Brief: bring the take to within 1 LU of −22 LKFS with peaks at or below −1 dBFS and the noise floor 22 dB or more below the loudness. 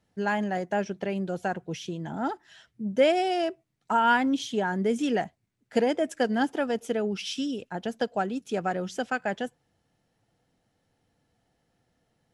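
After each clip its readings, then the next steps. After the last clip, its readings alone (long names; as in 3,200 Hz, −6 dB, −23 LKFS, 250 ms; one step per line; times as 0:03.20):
integrated loudness −28.0 LKFS; sample peak −11.5 dBFS; target loudness −22.0 LKFS
→ level +6 dB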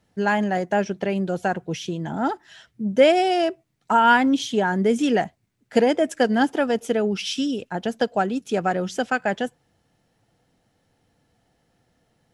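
integrated loudness −22.5 LKFS; sample peak −5.5 dBFS; background noise floor −69 dBFS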